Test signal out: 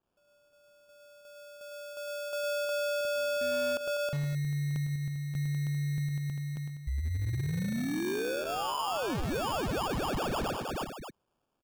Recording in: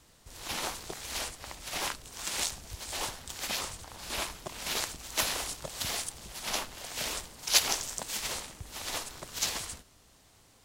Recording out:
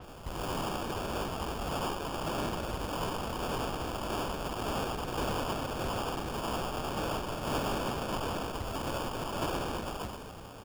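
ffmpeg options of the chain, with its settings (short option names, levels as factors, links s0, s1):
-filter_complex "[0:a]asplit=2[s0][s1];[s1]acompressor=threshold=0.00708:ratio=8,volume=0.841[s2];[s0][s2]amix=inputs=2:normalize=0,asoftclip=type=tanh:threshold=0.126,asplit=2[s3][s4];[s4]aecho=0:1:105|124|197|318|397|578:0.422|0.141|0.251|0.355|0.126|0.112[s5];[s3][s5]amix=inputs=2:normalize=0,asoftclip=type=hard:threshold=0.0376,bandreject=f=630:w=12,acrusher=samples=22:mix=1:aa=0.000001,alimiter=level_in=3.98:limit=0.0631:level=0:latency=1:release=169,volume=0.251,adynamicequalizer=threshold=0.00251:dfrequency=5600:dqfactor=0.7:tfrequency=5600:tqfactor=0.7:attack=5:release=100:ratio=0.375:range=2:mode=cutabove:tftype=highshelf,volume=2.51"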